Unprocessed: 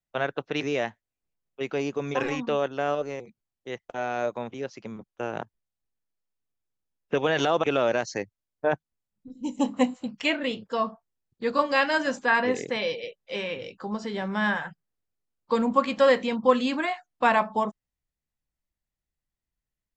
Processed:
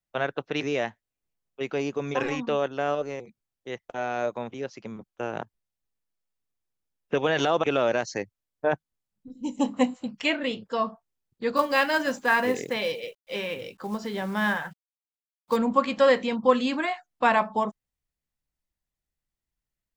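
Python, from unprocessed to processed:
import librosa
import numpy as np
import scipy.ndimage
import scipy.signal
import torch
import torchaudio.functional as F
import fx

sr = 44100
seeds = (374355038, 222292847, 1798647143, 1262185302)

y = fx.quant_companded(x, sr, bits=6, at=(11.56, 15.57))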